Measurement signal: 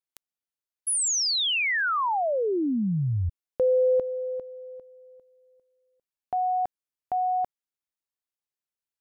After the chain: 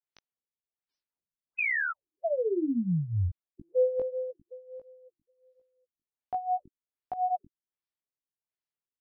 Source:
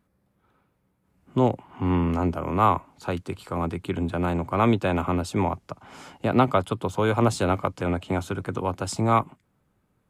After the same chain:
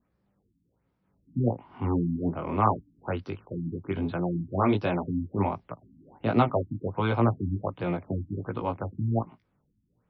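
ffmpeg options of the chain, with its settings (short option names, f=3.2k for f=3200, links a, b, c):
-af "adynamicequalizer=threshold=0.00631:dfrequency=1400:dqfactor=4.6:tfrequency=1400:tqfactor=4.6:attack=5:release=100:ratio=0.375:range=3:mode=cutabove:tftype=bell,flanger=delay=17:depth=3.5:speed=1.4,afftfilt=real='re*lt(b*sr/1024,310*pow(6100/310,0.5+0.5*sin(2*PI*1.3*pts/sr)))':imag='im*lt(b*sr/1024,310*pow(6100/310,0.5+0.5*sin(2*PI*1.3*pts/sr)))':win_size=1024:overlap=0.75"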